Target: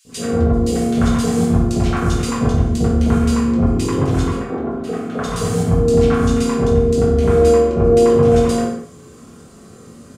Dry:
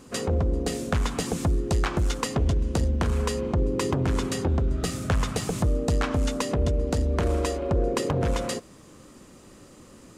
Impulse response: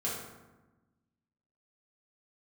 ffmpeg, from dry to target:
-filter_complex "[0:a]asettb=1/sr,asplit=3[link_01][link_02][link_03];[link_01]atrim=end=4.254[link_04];[link_02]atrim=start=4.25:end=5.24,asetpts=PTS-STARTPTS,afade=type=in:duration=0.004:curve=qsin,afade=type=out:start_time=0.986:duration=0.004:curve=qsin,acrossover=split=210 2400:gain=0.0708 1 0.158[link_05][link_06][link_07];[link_05][link_06][link_07]amix=inputs=3:normalize=0[link_08];[link_03]atrim=start=5.236[link_09];[link_04][link_08]acrossfade=duration=0.004:curve1=hsin:curve2=qsin[link_10];[link_10][link_09]acrossfade=duration=0.004:curve1=qsin:curve2=hsin,acrossover=split=660|2400[link_11][link_12][link_13];[link_11]adelay=50[link_14];[link_12]adelay=90[link_15];[link_14][link_15][link_13]amix=inputs=3:normalize=0[link_16];[1:a]atrim=start_sample=2205,afade=type=out:start_time=0.28:duration=0.01,atrim=end_sample=12789[link_17];[link_16][link_17]afir=irnorm=-1:irlink=0,volume=3dB"

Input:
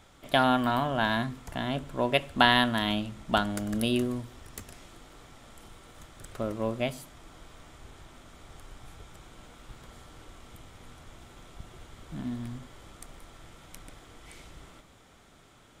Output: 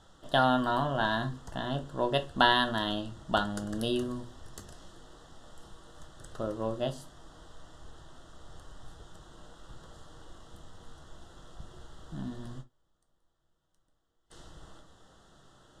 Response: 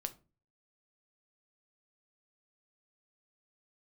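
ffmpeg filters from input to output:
-filter_complex "[0:a]lowpass=8500,equalizer=frequency=260:width=4:gain=-2.5,asplit=3[link_01][link_02][link_03];[link_01]afade=type=out:start_time=12.6:duration=0.02[link_04];[link_02]agate=range=-27dB:threshold=-40dB:ratio=16:detection=peak,afade=type=in:start_time=12.6:duration=0.02,afade=type=out:start_time=14.3:duration=0.02[link_05];[link_03]afade=type=in:start_time=14.3:duration=0.02[link_06];[link_04][link_05][link_06]amix=inputs=3:normalize=0,asuperstop=centerf=2300:order=4:qfactor=2.2[link_07];[1:a]atrim=start_sample=2205,atrim=end_sample=3087[link_08];[link_07][link_08]afir=irnorm=-1:irlink=0"

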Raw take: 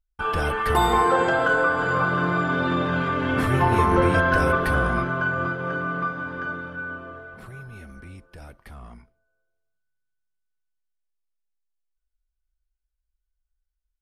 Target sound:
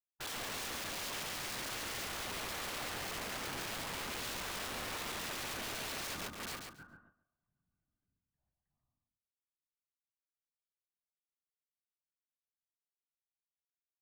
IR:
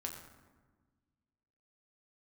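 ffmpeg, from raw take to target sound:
-filter_complex "[0:a]lowpass=1700,agate=range=-48dB:threshold=-30dB:ratio=16:detection=peak,aecho=1:1:1.1:0.74,alimiter=limit=-22.5dB:level=0:latency=1:release=131,areverse,acompressor=threshold=-31dB:ratio=16,areverse,afftfilt=real='hypot(re,im)*cos(2*PI*random(0))':imag='hypot(re,im)*sin(2*PI*random(1))':win_size=512:overlap=0.75,aeval=exprs='(mod(112*val(0)+1,2)-1)/112':channel_layout=same,asplit=2[link_01][link_02];[link_02]aecho=0:1:138|276|414:0.531|0.0903|0.0153[link_03];[link_01][link_03]amix=inputs=2:normalize=0,volume=3.5dB"

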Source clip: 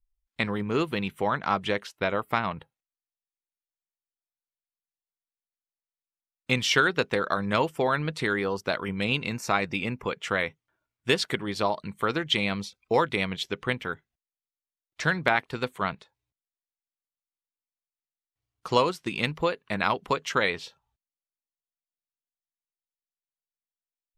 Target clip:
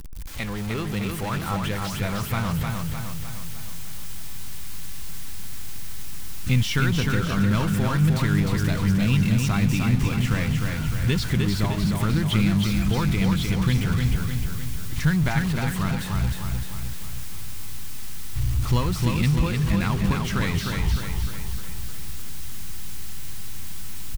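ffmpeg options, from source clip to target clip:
ffmpeg -i in.wav -filter_complex "[0:a]aeval=exprs='val(0)+0.5*0.0668*sgn(val(0))':channel_layout=same,asubboost=boost=11.5:cutoff=150,asplit=2[link_01][link_02];[link_02]aecho=0:1:305|610|915|1220|1525|1830|2135:0.631|0.341|0.184|0.0994|0.0537|0.029|0.0156[link_03];[link_01][link_03]amix=inputs=2:normalize=0,volume=-7dB" out.wav

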